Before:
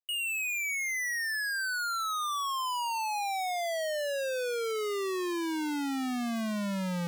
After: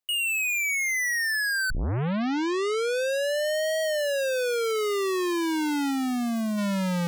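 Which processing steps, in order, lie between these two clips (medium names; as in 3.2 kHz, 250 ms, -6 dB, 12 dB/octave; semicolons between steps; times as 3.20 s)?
1.70 s: tape start 2.12 s; 5.90–6.57 s: peaking EQ 2.3 kHz -2.5 dB -> -10 dB 2.9 oct; trim +6 dB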